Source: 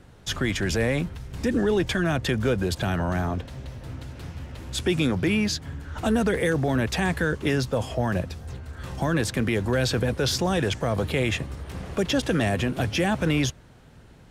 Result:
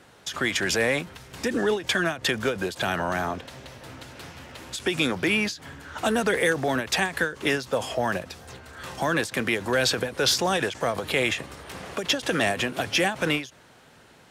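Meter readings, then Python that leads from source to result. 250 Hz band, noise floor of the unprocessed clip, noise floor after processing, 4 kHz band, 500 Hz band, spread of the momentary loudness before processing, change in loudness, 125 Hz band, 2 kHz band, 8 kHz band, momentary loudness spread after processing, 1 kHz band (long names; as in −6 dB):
−4.5 dB, −50 dBFS, −53 dBFS, +3.5 dB, −0.5 dB, 14 LU, 0.0 dB, −9.5 dB, +4.0 dB, +3.0 dB, 18 LU, +2.5 dB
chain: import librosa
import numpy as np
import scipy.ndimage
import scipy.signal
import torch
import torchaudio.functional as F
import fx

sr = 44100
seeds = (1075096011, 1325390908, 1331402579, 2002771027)

y = fx.highpass(x, sr, hz=660.0, slope=6)
y = fx.end_taper(y, sr, db_per_s=170.0)
y = y * 10.0 ** (5.5 / 20.0)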